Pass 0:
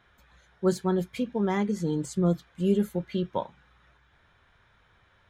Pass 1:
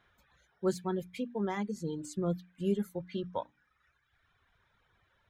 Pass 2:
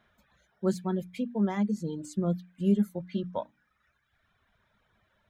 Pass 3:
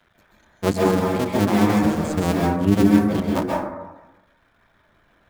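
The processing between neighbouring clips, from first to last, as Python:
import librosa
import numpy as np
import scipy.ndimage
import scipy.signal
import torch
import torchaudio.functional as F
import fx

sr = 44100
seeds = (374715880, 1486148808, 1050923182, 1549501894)

y1 = fx.dereverb_blind(x, sr, rt60_s=1.3)
y1 = fx.hum_notches(y1, sr, base_hz=60, count=5)
y1 = F.gain(torch.from_numpy(y1), -5.5).numpy()
y2 = fx.small_body(y1, sr, hz=(210.0, 620.0), ring_ms=45, db=9)
y3 = fx.cycle_switch(y2, sr, every=2, mode='muted')
y3 = fx.rev_plate(y3, sr, seeds[0], rt60_s=1.1, hf_ratio=0.3, predelay_ms=120, drr_db=-3.0)
y3 = F.gain(torch.from_numpy(y3), 9.0).numpy()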